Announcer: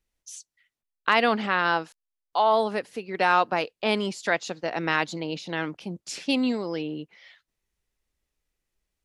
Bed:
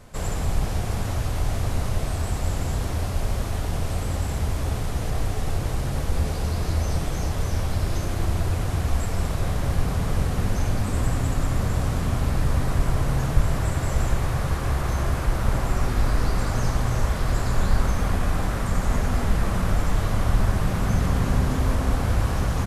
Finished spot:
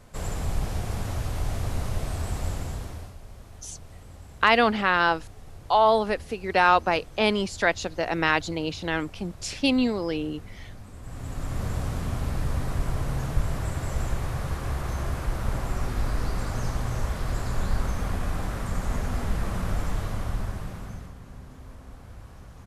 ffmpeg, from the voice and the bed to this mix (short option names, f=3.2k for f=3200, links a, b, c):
-filter_complex "[0:a]adelay=3350,volume=2dB[a];[1:a]volume=10dB,afade=t=out:st=2.44:d=0.73:silence=0.16788,afade=t=in:st=11.02:d=0.65:silence=0.199526,afade=t=out:st=19.85:d=1.3:silence=0.141254[b];[a][b]amix=inputs=2:normalize=0"